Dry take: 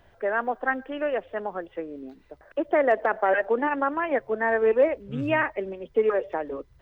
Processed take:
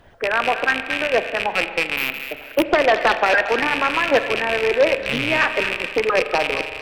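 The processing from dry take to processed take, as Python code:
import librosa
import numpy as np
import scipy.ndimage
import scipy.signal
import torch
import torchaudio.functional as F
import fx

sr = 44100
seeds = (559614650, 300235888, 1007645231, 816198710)

y = fx.rattle_buzz(x, sr, strikes_db=-44.0, level_db=-17.0)
y = fx.hpss(y, sr, part='harmonic', gain_db=-12)
y = fx.fold_sine(y, sr, drive_db=8, ceiling_db=-9.5)
y = fx.echo_wet_highpass(y, sr, ms=225, feedback_pct=30, hz=1600.0, wet_db=-7.5)
y = fx.resample_bad(y, sr, factor=3, down='none', up='hold', at=(1.97, 2.64))
y = fx.rev_spring(y, sr, rt60_s=2.0, pass_ms=(38,), chirp_ms=40, drr_db=10.0)
y = fx.doppler_dist(y, sr, depth_ms=0.19)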